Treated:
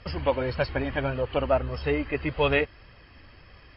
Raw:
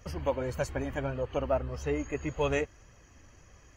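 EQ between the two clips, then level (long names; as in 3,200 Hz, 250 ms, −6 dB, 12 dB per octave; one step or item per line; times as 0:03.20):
linear-phase brick-wall low-pass 5,400 Hz
high-frequency loss of the air 75 metres
high-shelf EQ 2,000 Hz +10.5 dB
+4.5 dB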